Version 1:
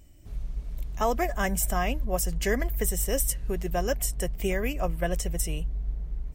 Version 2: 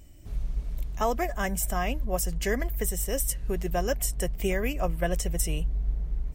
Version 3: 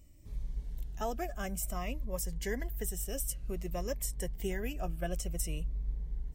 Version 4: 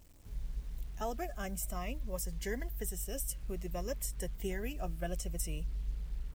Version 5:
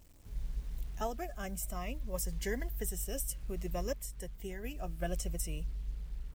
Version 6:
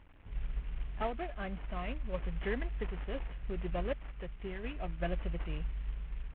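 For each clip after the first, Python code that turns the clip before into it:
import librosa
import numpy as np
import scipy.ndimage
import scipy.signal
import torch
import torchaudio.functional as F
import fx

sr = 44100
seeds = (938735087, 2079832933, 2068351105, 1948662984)

y1 = fx.rider(x, sr, range_db=3, speed_s=0.5)
y2 = fx.notch_cascade(y1, sr, direction='falling', hz=0.54)
y2 = y2 * 10.0 ** (-7.5 / 20.0)
y3 = fx.quant_dither(y2, sr, seeds[0], bits=10, dither='none')
y3 = y3 * 10.0 ** (-2.0 / 20.0)
y4 = fx.tremolo_random(y3, sr, seeds[1], hz=2.8, depth_pct=55)
y4 = y4 * 10.0 ** (2.0 / 20.0)
y5 = fx.cvsd(y4, sr, bps=16000)
y5 = y5 * 10.0 ** (1.5 / 20.0)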